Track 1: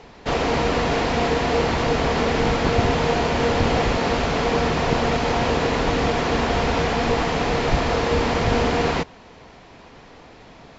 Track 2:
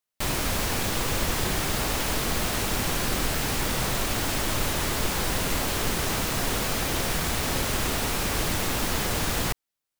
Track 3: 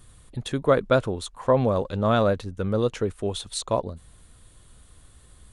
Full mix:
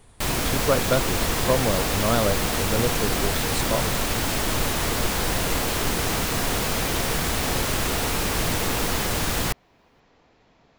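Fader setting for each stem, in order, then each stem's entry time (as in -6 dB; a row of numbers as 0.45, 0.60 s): -14.5, +2.0, -2.5 dB; 0.00, 0.00, 0.00 s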